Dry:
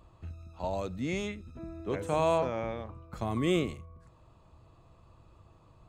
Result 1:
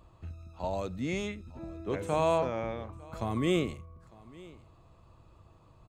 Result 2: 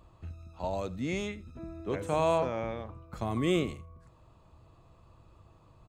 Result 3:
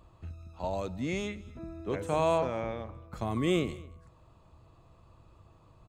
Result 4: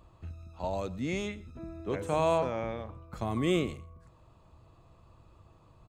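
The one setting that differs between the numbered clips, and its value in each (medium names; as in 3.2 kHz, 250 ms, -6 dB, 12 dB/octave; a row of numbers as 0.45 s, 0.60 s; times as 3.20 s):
delay, time: 902 ms, 80 ms, 227 ms, 123 ms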